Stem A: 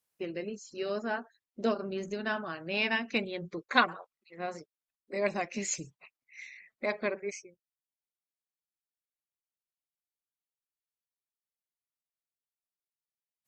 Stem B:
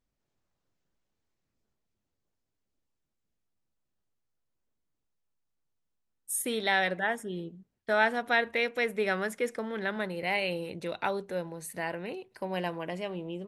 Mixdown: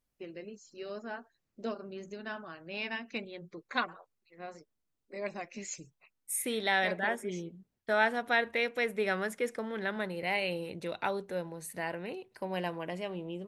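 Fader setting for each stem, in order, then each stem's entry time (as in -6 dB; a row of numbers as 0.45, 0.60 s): -7.5, -2.0 dB; 0.00, 0.00 s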